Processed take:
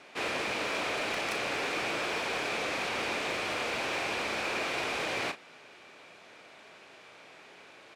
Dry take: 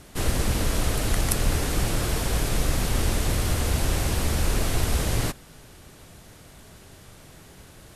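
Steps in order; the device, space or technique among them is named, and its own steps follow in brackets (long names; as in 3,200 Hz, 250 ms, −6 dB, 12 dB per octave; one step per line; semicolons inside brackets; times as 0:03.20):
megaphone (band-pass filter 470–3,700 Hz; parametric band 2,400 Hz +9.5 dB 0.2 octaves; hard clipping −27 dBFS, distortion −19 dB; double-tracking delay 36 ms −10 dB)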